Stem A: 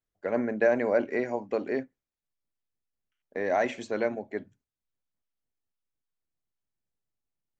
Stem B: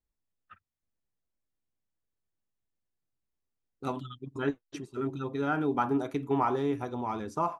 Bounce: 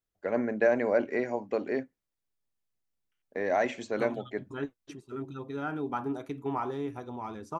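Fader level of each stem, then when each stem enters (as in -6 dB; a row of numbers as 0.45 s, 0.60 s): -1.0 dB, -5.0 dB; 0.00 s, 0.15 s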